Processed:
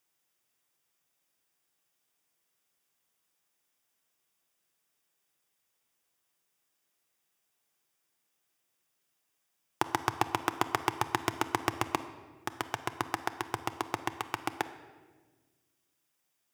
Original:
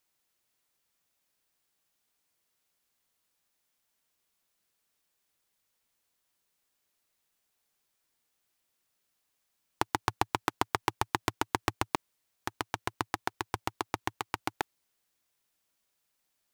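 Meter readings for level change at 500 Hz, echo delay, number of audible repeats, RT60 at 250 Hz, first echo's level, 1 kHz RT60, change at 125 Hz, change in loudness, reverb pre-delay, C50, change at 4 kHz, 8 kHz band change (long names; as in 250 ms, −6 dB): +1.0 dB, no echo audible, no echo audible, 2.0 s, no echo audible, 1.2 s, −1.0 dB, +0.5 dB, 3 ms, 12.5 dB, −0.5 dB, 0.0 dB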